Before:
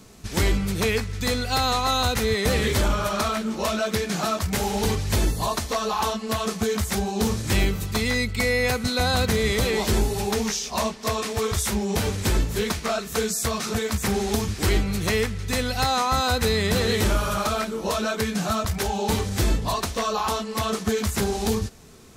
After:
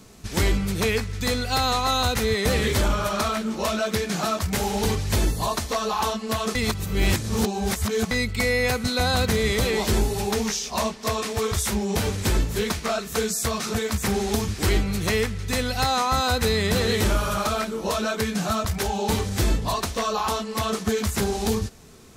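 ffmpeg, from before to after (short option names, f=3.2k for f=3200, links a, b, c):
-filter_complex "[0:a]asplit=3[a][b][c];[a]atrim=end=6.552[d];[b]atrim=start=6.548:end=8.112,asetpts=PTS-STARTPTS,areverse[e];[c]atrim=start=8.108[f];[d][e]acrossfade=d=0.004:c1=hsin:c2=hsin[g];[g][f]acrossfade=d=0.004:c1=hsin:c2=hsin"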